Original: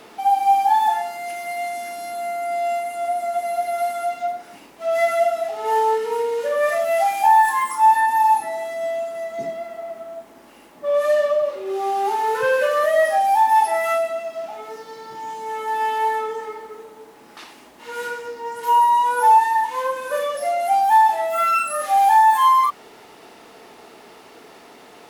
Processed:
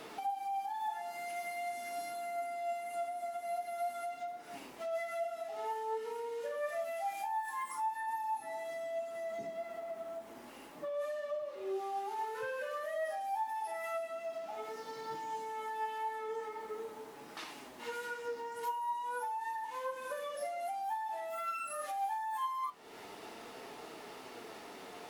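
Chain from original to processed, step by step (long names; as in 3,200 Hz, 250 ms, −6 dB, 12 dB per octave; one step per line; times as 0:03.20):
in parallel at 0 dB: brickwall limiter −15.5 dBFS, peak gain reduction 9.5 dB
on the sum: downward compressor 4 to 1, threshold −29 dBFS, peak gain reduction 18 dB
flanger 0.46 Hz, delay 6.2 ms, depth 5.2 ms, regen +62%
level −6 dB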